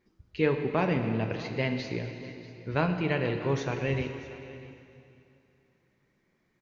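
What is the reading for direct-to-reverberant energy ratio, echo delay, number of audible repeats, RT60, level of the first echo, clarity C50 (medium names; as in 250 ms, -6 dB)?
5.5 dB, 444 ms, 2, 2.7 s, -19.5 dB, 6.5 dB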